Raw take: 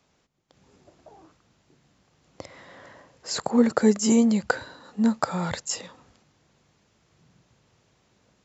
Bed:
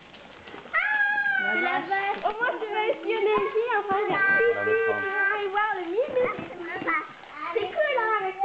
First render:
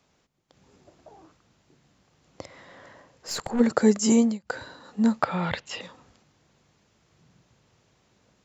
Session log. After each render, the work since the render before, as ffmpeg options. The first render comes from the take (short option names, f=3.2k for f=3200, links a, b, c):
-filter_complex "[0:a]asplit=3[a][b][c];[a]afade=t=out:st=2.44:d=0.02[d];[b]aeval=exprs='(tanh(14.1*val(0)+0.4)-tanh(0.4))/14.1':c=same,afade=t=in:st=2.44:d=0.02,afade=t=out:st=3.59:d=0.02[e];[c]afade=t=in:st=3.59:d=0.02[f];[d][e][f]amix=inputs=3:normalize=0,asettb=1/sr,asplit=3[g][h][i];[g]atrim=end=5.224[j];[h]atrim=start=5.22:end=5.81,asetpts=PTS-STARTPTS,afade=t=in:d=0.004:c=qsin,afade=t=out:st=0.586:d=0.004:c=qsin,lowpass=f=2.9k:t=q:w=2.3[k];[i]atrim=start=5.806[l];[j][k]acrossfade=d=0.004:c1=hsin:c2=qsin[m];[m][l]acrossfade=d=0.004:c1=qsin:c2=hsin,asplit=3[n][o][p];[n]atrim=end=4.39,asetpts=PTS-STARTPTS,afade=t=out:st=4.15:d=0.24:c=qsin:silence=0.0668344[q];[o]atrim=start=4.39:end=4.45,asetpts=PTS-STARTPTS,volume=-23.5dB[r];[p]atrim=start=4.45,asetpts=PTS-STARTPTS,afade=t=in:d=0.24:c=qsin:silence=0.0668344[s];[q][r][s]concat=n=3:v=0:a=1"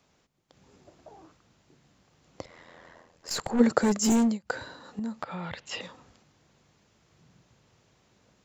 -filter_complex "[0:a]asplit=3[a][b][c];[a]afade=t=out:st=2.42:d=0.02[d];[b]aeval=exprs='val(0)*sin(2*PI*42*n/s)':c=same,afade=t=in:st=2.42:d=0.02,afade=t=out:st=3.29:d=0.02[e];[c]afade=t=in:st=3.29:d=0.02[f];[d][e][f]amix=inputs=3:normalize=0,asettb=1/sr,asplit=3[g][h][i];[g]atrim=end=3.814[j];[h]atrim=start=3.81:end=4.42,asetpts=PTS-STARTPTS,afade=t=in:d=0.004:c=qsin,afade=t=out:st=0.606:d=0.004:c=qsin,asoftclip=type=hard:threshold=-19.5dB[k];[i]atrim=start=4.416[l];[j][k]acrossfade=d=0.004:c1=hsin:c2=qsin[m];[m][l]acrossfade=d=0.004:c1=qsin:c2=hsin,asettb=1/sr,asplit=3[n][o][p];[n]atrim=end=4.994[q];[o]atrim=start=4.99:end=5.72,asetpts=PTS-STARTPTS,afade=t=in:d=0.004:c=qsin,afade=t=out:st=0.726:d=0.004:c=qsin,acompressor=threshold=-37dB:ratio=2.5:attack=3.2:release=140:knee=1:detection=peak[r];[p]atrim=start=5.716[s];[q][r]acrossfade=d=0.004:c1=hsin:c2=qsin[t];[t][s]acrossfade=d=0.004:c1=qsin:c2=hsin"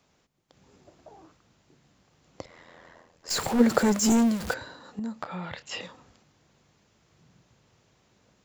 -filter_complex "[0:a]asettb=1/sr,asplit=3[a][b][c];[a]atrim=end=3.304[d];[b]atrim=start=3.3:end=4.54,asetpts=PTS-STARTPTS,afade=t=in:d=0.004:c=qsin,afade=t=out:st=1.236:d=0.004:c=qsin,aeval=exprs='val(0)+0.5*0.0335*sgn(val(0))':c=same[e];[c]atrim=start=4.536[f];[d][e]acrossfade=d=0.004:c1=hsin:c2=qsin[g];[g][f]acrossfade=d=0.004:c1=qsin:c2=hsin,asettb=1/sr,asplit=3[h][i][j];[h]atrim=end=5.134[k];[i]atrim=start=5.13:end=5.86,asetpts=PTS-STARTPTS,afade=t=in:d=0.004:c=qsin,afade=t=out:st=0.726:d=0.004:c=qsin,asplit=2[l][m];[m]adelay=27,volume=-10dB[n];[l][n]amix=inputs=2:normalize=0,atrim=end_sample=32193[o];[j]atrim=start=5.856[p];[k][o]acrossfade=d=0.004:c1=hsin:c2=qsin[q];[q][p]acrossfade=d=0.004:c1=qsin:c2=hsin"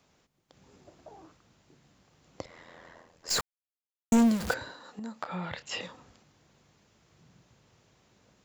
-filter_complex "[0:a]asettb=1/sr,asplit=3[a][b][c];[a]atrim=end=4.714[d];[b]atrim=start=4.71:end=5.29,asetpts=PTS-STARTPTS,afade=t=in:d=0.004:c=qsin,afade=t=out:st=0.576:d=0.004:c=qsin,lowshelf=f=260:g=-11.5[e];[c]atrim=start=5.286[f];[d][e]acrossfade=d=0.004:c1=hsin:c2=qsin[g];[g][f]acrossfade=d=0.004:c1=qsin:c2=hsin,asplit=3[h][i][j];[h]atrim=end=3.41,asetpts=PTS-STARTPTS,afade=t=out:st=3.406:d=0.004:c=hsin[k];[i]atrim=start=3.41:end=4.12,asetpts=PTS-STARTPTS,volume=0[l];[j]atrim=start=4.12,asetpts=PTS-STARTPTS,afade=t=in:d=0.004:c=hsin[m];[k][l][m]concat=n=3:v=0:a=1"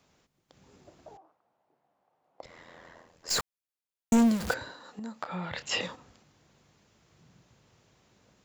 -filter_complex "[0:a]asettb=1/sr,asplit=3[a][b][c];[a]atrim=end=1.174[d];[b]atrim=start=1.17:end=2.43,asetpts=PTS-STARTPTS,afade=t=in:d=0.004:c=qsin,afade=t=out:st=1.256:d=0.004:c=qsin,bandpass=f=750:t=q:w=2.8[e];[c]atrim=start=2.426[f];[d][e]acrossfade=d=0.004:c1=hsin:c2=qsin[g];[g][f]acrossfade=d=0.004:c1=qsin:c2=hsin,asplit=3[h][i][j];[h]afade=t=out:st=5.54:d=0.02[k];[i]acontrast=43,afade=t=in:st=5.54:d=0.02,afade=t=out:st=5.94:d=0.02[l];[j]afade=t=in:st=5.94:d=0.02[m];[k][l][m]amix=inputs=3:normalize=0"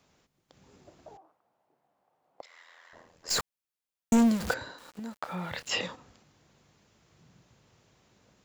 -filter_complex "[0:a]asettb=1/sr,asplit=3[a][b][c];[a]atrim=end=2.414[d];[b]atrim=start=2.41:end=2.93,asetpts=PTS-STARTPTS,afade=t=in:d=0.004:c=qsin,afade=t=out:st=0.516:d=0.004:c=qsin,highpass=1.2k[e];[c]atrim=start=2.926[f];[d][e]acrossfade=d=0.004:c1=hsin:c2=qsin[g];[g][f]acrossfade=d=0.004:c1=qsin:c2=hsin,asettb=1/sr,asplit=3[h][i][j];[h]atrim=end=4.784[k];[i]atrim=start=4.78:end=5.74,asetpts=PTS-STARTPTS,afade=t=in:d=0.004:c=qsin,afade=t=out:st=0.956:d=0.004:c=qsin,aeval=exprs='val(0)*gte(abs(val(0)),0.00355)':c=same[l];[j]atrim=start=5.736[m];[k][l]acrossfade=d=0.004:c1=hsin:c2=qsin[n];[n][m]acrossfade=d=0.004:c1=qsin:c2=hsin"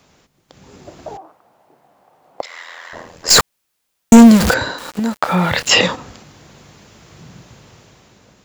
-af "dynaudnorm=f=200:g=9:m=7dB,alimiter=level_in=13.5dB:limit=-1dB:release=50:level=0:latency=1"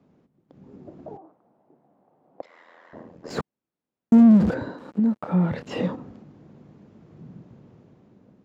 -af "asoftclip=type=tanh:threshold=-10dB,bandpass=f=230:t=q:w=1.2:csg=0"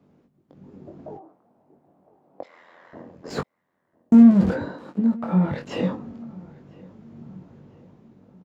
-filter_complex "[0:a]asplit=2[a][b];[b]adelay=21,volume=-5.5dB[c];[a][c]amix=inputs=2:normalize=0,asplit=2[d][e];[e]adelay=1001,lowpass=f=2k:p=1,volume=-23dB,asplit=2[f][g];[g]adelay=1001,lowpass=f=2k:p=1,volume=0.5,asplit=2[h][i];[i]adelay=1001,lowpass=f=2k:p=1,volume=0.5[j];[d][f][h][j]amix=inputs=4:normalize=0"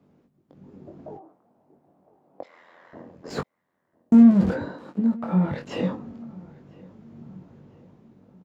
-af "volume=-1.5dB"